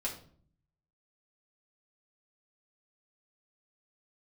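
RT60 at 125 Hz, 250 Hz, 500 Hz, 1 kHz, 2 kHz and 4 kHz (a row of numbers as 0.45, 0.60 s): 1.0, 0.85, 0.55, 0.45, 0.40, 0.35 s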